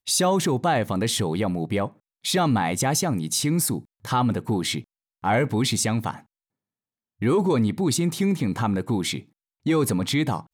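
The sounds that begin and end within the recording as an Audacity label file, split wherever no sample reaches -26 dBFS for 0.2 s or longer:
2.250000	3.780000	sound
4.050000	4.790000	sound
5.240000	6.110000	sound
7.220000	9.190000	sound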